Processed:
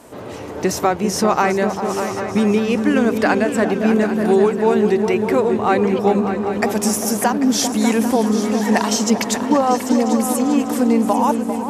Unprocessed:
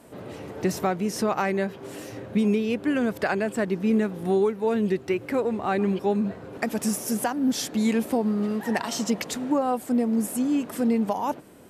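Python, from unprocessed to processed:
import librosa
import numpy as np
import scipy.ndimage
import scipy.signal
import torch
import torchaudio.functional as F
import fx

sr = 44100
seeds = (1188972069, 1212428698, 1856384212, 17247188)

y = fx.graphic_eq_15(x, sr, hz=(160, 1000, 6300), db=(-6, 4, 5))
y = fx.echo_opening(y, sr, ms=198, hz=200, octaves=2, feedback_pct=70, wet_db=-3)
y = F.gain(torch.from_numpy(y), 7.0).numpy()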